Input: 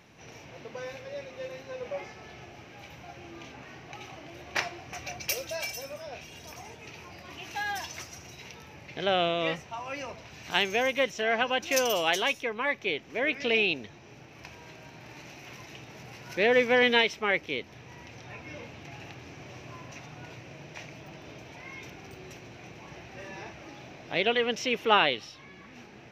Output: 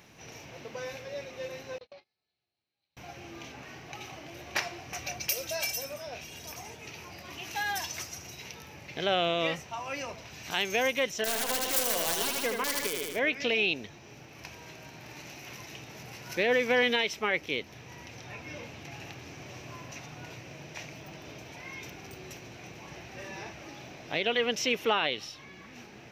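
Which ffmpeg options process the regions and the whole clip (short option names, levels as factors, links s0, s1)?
-filter_complex "[0:a]asettb=1/sr,asplit=3[s0][s1][s2];[s0]atrim=end=1.784[s3];[s1]atrim=start=1.78:end=2.97,asetpts=PTS-STARTPTS,afade=t=in:d=0.004:c=qsin,afade=t=out:st=1.186:d=0.004:c=qsin,agate=range=0.00562:threshold=0.0141:ratio=16:release=100:detection=peak,lowpass=f=4200:t=q:w=11,acompressor=threshold=0.00501:ratio=16:attack=3.2:release=140:knee=1:detection=peak[s4];[s2]atrim=start=2.966[s5];[s3][s4]acrossfade=d=0.004:c1=hsin:c2=qsin[s6];[s6][s5]acrossfade=d=0.004:c1=qsin:c2=hsin,asettb=1/sr,asplit=3[s7][s8][s9];[s7]atrim=end=11.164[s10];[s8]atrim=start=11.16:end=13.19,asetpts=PTS-STARTPTS,afade=t=in:d=0.004:c=qsin,afade=t=out:st=2.026:d=0.004:c=qsin,equalizer=f=2500:t=o:w=0.24:g=-7.5,aeval=exprs='(mod(10*val(0)+1,2)-1)/10':c=same,aecho=1:1:77|154|231|308|385|462|539:0.562|0.304|0.164|0.0885|0.0478|0.0258|0.0139,atrim=end_sample=89523[s11];[s9]atrim=start=13.186[s12];[s10][s11]acrossfade=d=0.004:c1=hsin:c2=qsin[s13];[s13][s12]acrossfade=d=0.004:c1=qsin:c2=hsin,highshelf=f=6300:g=10,alimiter=limit=0.158:level=0:latency=1:release=119"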